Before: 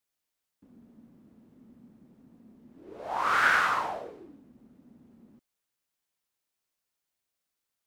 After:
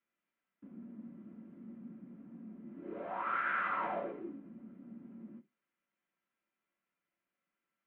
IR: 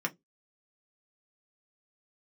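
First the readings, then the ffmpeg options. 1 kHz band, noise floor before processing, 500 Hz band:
−8.5 dB, −85 dBFS, −3.0 dB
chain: -filter_complex "[0:a]lowpass=frequency=2700:width=0.5412,lowpass=frequency=2700:width=1.3066,areverse,acompressor=threshold=-34dB:ratio=20,areverse[link_01];[1:a]atrim=start_sample=2205,asetrate=48510,aresample=44100[link_02];[link_01][link_02]afir=irnorm=-1:irlink=0,volume=-2dB"

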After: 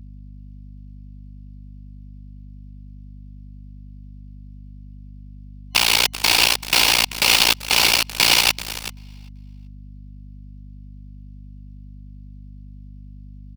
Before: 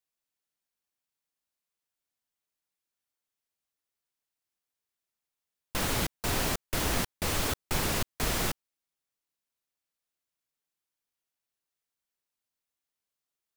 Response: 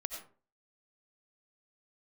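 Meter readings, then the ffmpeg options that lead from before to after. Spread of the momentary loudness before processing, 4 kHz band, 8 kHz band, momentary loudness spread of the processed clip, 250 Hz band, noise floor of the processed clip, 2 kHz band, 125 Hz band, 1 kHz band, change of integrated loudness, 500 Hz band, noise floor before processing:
3 LU, +20.0 dB, +13.0 dB, 11 LU, +2.5 dB, −39 dBFS, +16.5 dB, +3.5 dB, +11.0 dB, +14.5 dB, +4.5 dB, below −85 dBFS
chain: -filter_complex "[0:a]asplit=2[link_01][link_02];[link_02]asoftclip=type=tanh:threshold=-29dB,volume=-4dB[link_03];[link_01][link_03]amix=inputs=2:normalize=0,tremolo=f=58:d=0.788,superequalizer=9b=2.51:12b=3.16:14b=2.82,alimiter=limit=-22dB:level=0:latency=1:release=61,acontrast=56,highpass=frequency=560:poles=1,equalizer=frequency=3500:width=2:gain=14,acontrast=33,aecho=1:1:386|772|1158:0.501|0.0952|0.0181,acrusher=bits=6:mode=log:mix=0:aa=0.000001,aeval=exprs='0.668*(cos(1*acos(clip(val(0)/0.668,-1,1)))-cos(1*PI/2))+0.00376*(cos(3*acos(clip(val(0)/0.668,-1,1)))-cos(3*PI/2))+0.0376*(cos(5*acos(clip(val(0)/0.668,-1,1)))-cos(5*PI/2))+0.133*(cos(7*acos(clip(val(0)/0.668,-1,1)))-cos(7*PI/2))':channel_layout=same,aeval=exprs='val(0)+0.00891*(sin(2*PI*50*n/s)+sin(2*PI*2*50*n/s)/2+sin(2*PI*3*50*n/s)/3+sin(2*PI*4*50*n/s)/4+sin(2*PI*5*50*n/s)/5)':channel_layout=same,volume=3dB"

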